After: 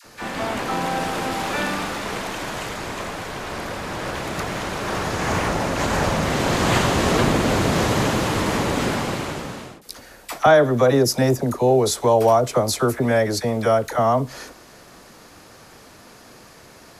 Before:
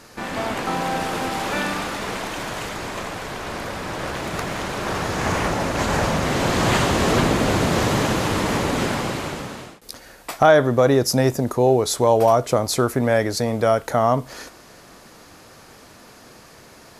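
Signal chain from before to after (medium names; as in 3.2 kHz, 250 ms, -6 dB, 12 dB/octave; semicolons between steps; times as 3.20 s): phase dispersion lows, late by 48 ms, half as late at 780 Hz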